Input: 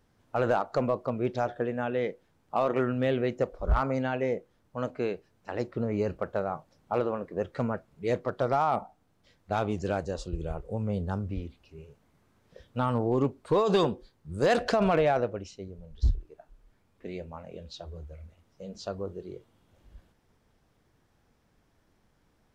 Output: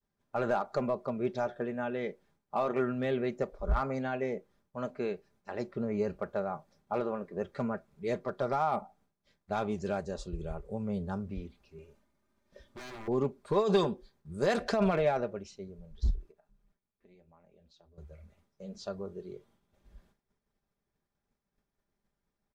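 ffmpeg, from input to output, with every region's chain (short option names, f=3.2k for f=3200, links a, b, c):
-filter_complex "[0:a]asettb=1/sr,asplit=3[a][b][c];[a]atrim=end=11.784[d];[b]atrim=start=11.78:end=13.08,asetpts=PTS-STARTPTS,afade=t=in:d=0.004:c=qsin,afade=t=out:st=1.296:d=0.004:c=qsin,aecho=1:1:3.3:0.56,atrim=end_sample=57330,acompressor=threshold=-28dB:ratio=8:attack=3.2:release=140:knee=1:detection=peak,aeval=exprs='0.0158*(abs(mod(val(0)/0.0158+3,4)-2)-1)':c=same[e];[c]atrim=start=13.076[f];[d][e]acrossfade=d=0.004:c1=hsin:c2=qsin[g];[g][f]acrossfade=d=0.004:c1=qsin:c2=hsin,asettb=1/sr,asplit=3[h][i][j];[h]atrim=end=16.314[k];[i]atrim=start=16.31:end=17.98,asetpts=PTS-STARTPTS,afade=t=in:d=0.004:c=qsin,afade=t=out:st=1.666:d=0.004:c=qsin,acompressor=threshold=-57dB:ratio=3:attack=3.2:release=140:knee=1:detection=peak,tremolo=f=170:d=0.571[l];[j]atrim=start=17.976[m];[k][l]acrossfade=d=0.004:c1=hsin:c2=qsin[n];[n][m]acrossfade=d=0.004:c1=qsin:c2=hsin,agate=range=-33dB:threshold=-58dB:ratio=3:detection=peak,bandreject=f=2.9k:w=12,aecho=1:1:5:0.47,volume=-4.5dB"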